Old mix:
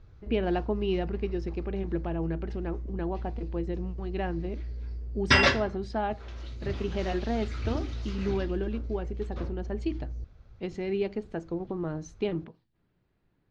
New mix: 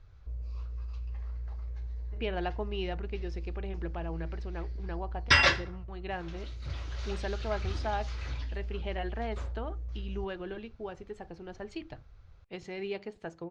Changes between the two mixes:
speech: entry +1.90 s; master: add bell 250 Hz -11.5 dB 1.8 oct

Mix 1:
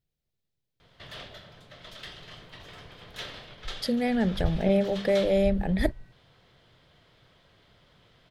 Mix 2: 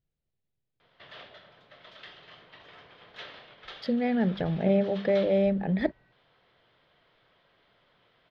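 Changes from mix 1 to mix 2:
background: add HPF 540 Hz 6 dB/oct; master: add air absorption 250 m

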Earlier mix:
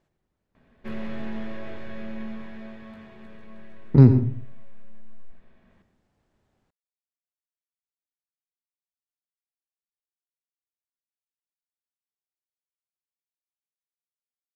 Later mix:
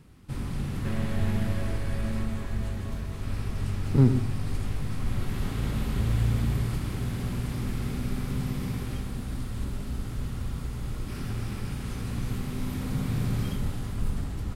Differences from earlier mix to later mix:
speech -6.5 dB; first sound: unmuted

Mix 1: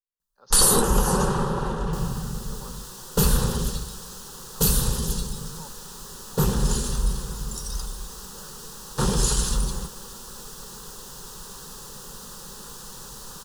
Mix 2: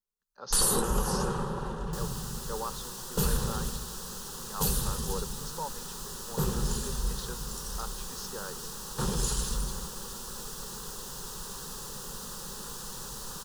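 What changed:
speech +10.5 dB; first sound -8.0 dB

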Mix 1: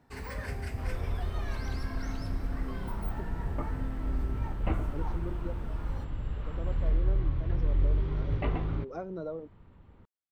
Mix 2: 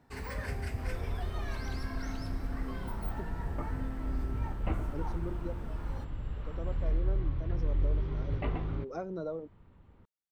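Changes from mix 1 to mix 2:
speech: remove air absorption 89 m; second sound -3.0 dB

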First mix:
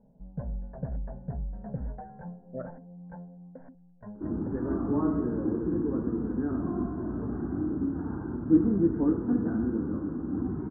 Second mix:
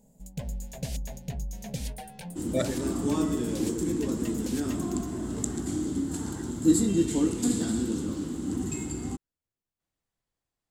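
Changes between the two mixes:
speech +10.0 dB; second sound: entry -1.85 s; master: remove steep low-pass 1600 Hz 72 dB/oct

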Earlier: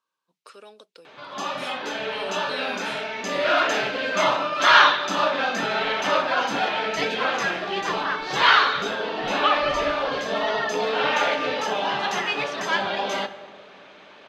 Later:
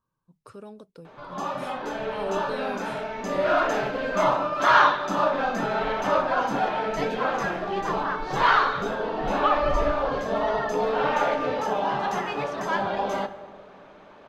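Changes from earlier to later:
speech: remove HPF 440 Hz 12 dB/oct; master: remove weighting filter D

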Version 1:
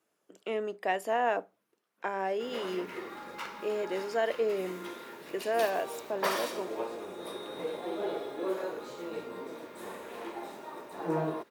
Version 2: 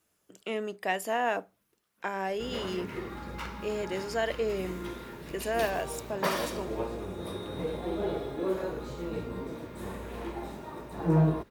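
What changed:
speech: add tilt +2.5 dB/oct; master: remove HPF 370 Hz 12 dB/oct

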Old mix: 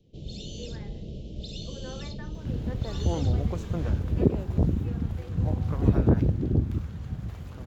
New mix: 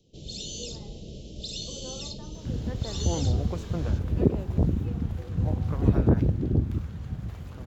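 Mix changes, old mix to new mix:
speech: add polynomial smoothing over 65 samples; first sound: add tone controls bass -4 dB, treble +13 dB

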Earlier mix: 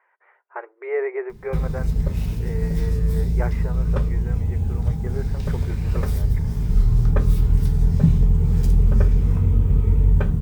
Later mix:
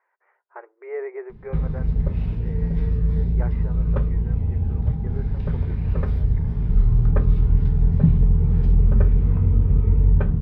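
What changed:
speech -5.0 dB; master: add air absorption 390 m

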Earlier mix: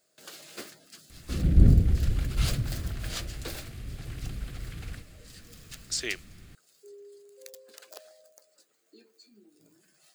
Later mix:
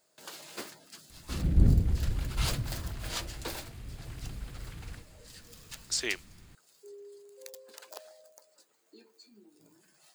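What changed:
second sound -4.5 dB; master: add bell 930 Hz +11 dB 0.34 oct

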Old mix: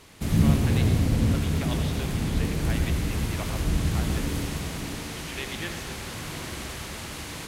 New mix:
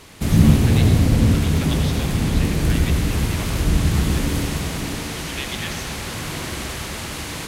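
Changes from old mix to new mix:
speech: add tilt +4 dB/oct; background +7.0 dB

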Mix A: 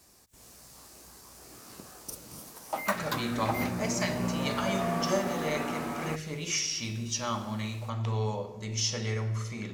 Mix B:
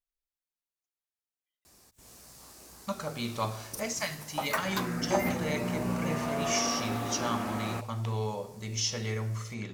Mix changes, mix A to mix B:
speech: send -8.0 dB; background: entry +1.65 s

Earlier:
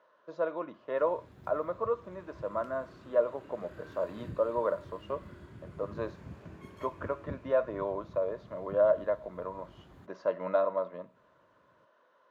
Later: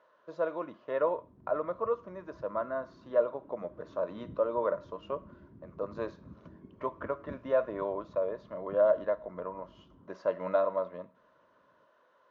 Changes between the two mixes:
background: add band-pass 250 Hz, Q 1.7; master: remove HPF 110 Hz 12 dB/oct

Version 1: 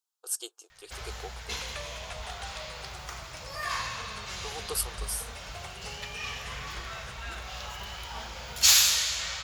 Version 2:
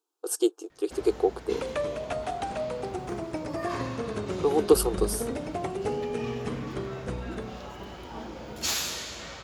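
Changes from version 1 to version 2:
first sound -11.5 dB; master: remove passive tone stack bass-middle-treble 10-0-10

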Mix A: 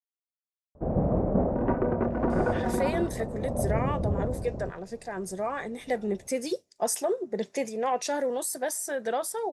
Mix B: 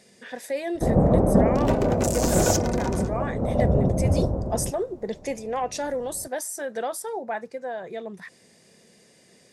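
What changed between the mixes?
speech: entry -2.30 s; first sound +7.0 dB; second sound: remove LPF 1600 Hz 24 dB/oct

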